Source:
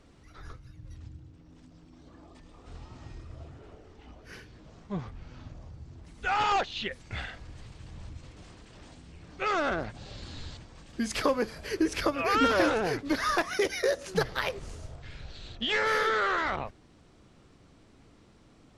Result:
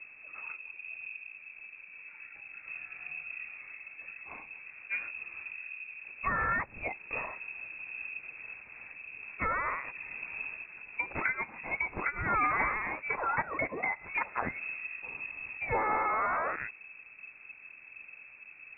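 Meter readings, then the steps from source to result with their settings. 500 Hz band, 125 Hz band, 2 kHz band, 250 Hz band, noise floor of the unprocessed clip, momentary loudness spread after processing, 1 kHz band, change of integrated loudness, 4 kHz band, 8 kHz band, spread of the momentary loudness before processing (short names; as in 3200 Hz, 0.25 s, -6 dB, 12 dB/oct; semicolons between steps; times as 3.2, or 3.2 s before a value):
-10.5 dB, -7.0 dB, +0.5 dB, -13.0 dB, -58 dBFS, 17 LU, -2.0 dB, -5.5 dB, under -30 dB, under -35 dB, 23 LU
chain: added noise brown -53 dBFS; inverted band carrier 2600 Hz; treble ducked by the level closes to 1400 Hz, closed at -26.5 dBFS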